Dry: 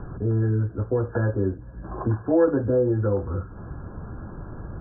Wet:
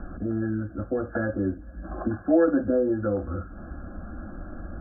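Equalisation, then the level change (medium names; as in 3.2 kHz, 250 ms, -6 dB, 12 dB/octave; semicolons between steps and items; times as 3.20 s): static phaser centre 640 Hz, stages 8; +2.5 dB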